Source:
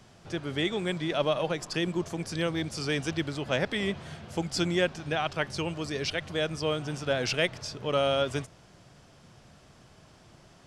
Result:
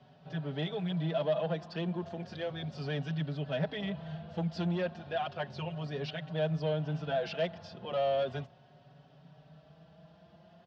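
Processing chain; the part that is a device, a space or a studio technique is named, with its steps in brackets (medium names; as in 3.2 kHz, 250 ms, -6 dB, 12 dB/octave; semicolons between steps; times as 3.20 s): 3.02–3.62 s: peaking EQ 800 Hz -5 dB 1.2 oct; barber-pole flanger into a guitar amplifier (endless flanger 4.9 ms +0.34 Hz; saturation -26 dBFS, distortion -12 dB; cabinet simulation 93–3800 Hz, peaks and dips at 110 Hz -7 dB, 160 Hz +10 dB, 330 Hz -6 dB, 670 Hz +8 dB, 1.2 kHz -5 dB, 2.2 kHz -9 dB); trim -1.5 dB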